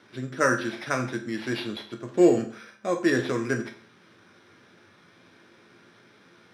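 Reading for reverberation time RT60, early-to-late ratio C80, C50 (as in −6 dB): 0.50 s, 14.5 dB, 10.5 dB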